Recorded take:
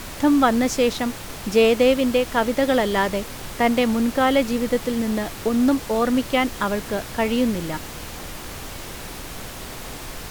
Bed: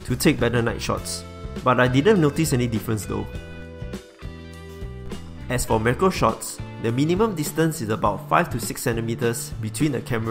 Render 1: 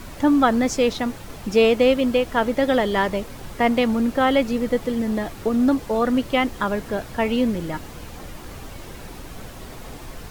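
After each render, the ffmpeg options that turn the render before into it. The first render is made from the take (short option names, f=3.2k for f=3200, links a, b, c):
-af "afftdn=nr=8:nf=-35"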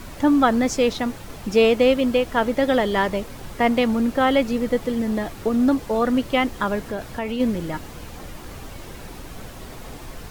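-filter_complex "[0:a]asplit=3[a][b][c];[a]afade=t=out:st=6.84:d=0.02[d];[b]acompressor=threshold=-24dB:ratio=3:attack=3.2:release=140:knee=1:detection=peak,afade=t=in:st=6.84:d=0.02,afade=t=out:st=7.39:d=0.02[e];[c]afade=t=in:st=7.39:d=0.02[f];[d][e][f]amix=inputs=3:normalize=0"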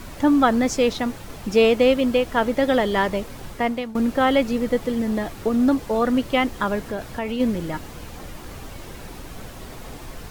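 -filter_complex "[0:a]asplit=2[a][b];[a]atrim=end=3.95,asetpts=PTS-STARTPTS,afade=t=out:st=3.46:d=0.49:silence=0.11885[c];[b]atrim=start=3.95,asetpts=PTS-STARTPTS,afade=t=in:d=0.004:c=hsin:silence=0.11885[d];[c][d]concat=n=2:v=0:a=1"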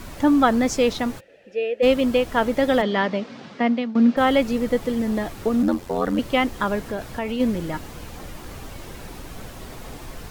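-filter_complex "[0:a]asplit=3[a][b][c];[a]afade=t=out:st=1.19:d=0.02[d];[b]asplit=3[e][f][g];[e]bandpass=f=530:t=q:w=8,volume=0dB[h];[f]bandpass=f=1.84k:t=q:w=8,volume=-6dB[i];[g]bandpass=f=2.48k:t=q:w=8,volume=-9dB[j];[h][i][j]amix=inputs=3:normalize=0,afade=t=in:st=1.19:d=0.02,afade=t=out:st=1.82:d=0.02[k];[c]afade=t=in:st=1.82:d=0.02[l];[d][k][l]amix=inputs=3:normalize=0,asplit=3[m][n][o];[m]afade=t=out:st=2.81:d=0.02[p];[n]highpass=f=160:w=0.5412,highpass=f=160:w=1.3066,equalizer=f=240:t=q:w=4:g=7,equalizer=f=350:t=q:w=4:g=-5,equalizer=f=930:t=q:w=4:g=-3,lowpass=f=5.2k:w=0.5412,lowpass=f=5.2k:w=1.3066,afade=t=in:st=2.81:d=0.02,afade=t=out:st=4.16:d=0.02[q];[o]afade=t=in:st=4.16:d=0.02[r];[p][q][r]amix=inputs=3:normalize=0,asettb=1/sr,asplit=3[s][t][u];[s]atrim=end=5.624[v];[t]atrim=start=5.62:end=6.19,asetpts=PTS-STARTPTS,afade=t=in:d=0.004:c=qsin,afade=t=out:st=0.566:d=0.004:c=qsin,aeval=exprs='val(0)*sin(2*PI*44*n/s)':c=same[w];[u]atrim=start=6.186[x];[v][w]acrossfade=d=0.004:c1=hsin:c2=qsin[y];[y][x]acrossfade=d=0.004:c1=qsin:c2=hsin"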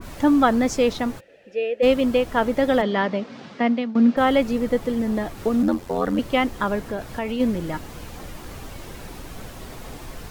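-af "adynamicequalizer=threshold=0.0141:dfrequency=1900:dqfactor=0.7:tfrequency=1900:tqfactor=0.7:attack=5:release=100:ratio=0.375:range=1.5:mode=cutabove:tftype=highshelf"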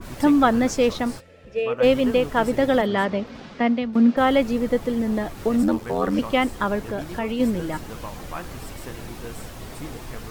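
-filter_complex "[1:a]volume=-16dB[a];[0:a][a]amix=inputs=2:normalize=0"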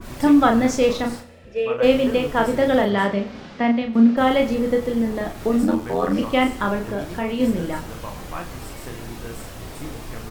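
-filter_complex "[0:a]asplit=2[a][b];[b]adelay=35,volume=-4.5dB[c];[a][c]amix=inputs=2:normalize=0,aecho=1:1:93|186|279|372:0.15|0.0613|0.0252|0.0103"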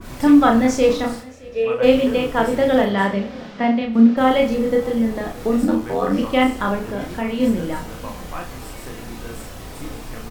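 -filter_complex "[0:a]asplit=2[a][b];[b]adelay=31,volume=-6.5dB[c];[a][c]amix=inputs=2:normalize=0,aecho=1:1:619:0.0708"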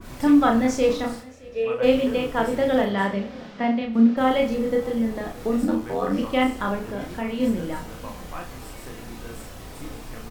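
-af "volume=-4.5dB"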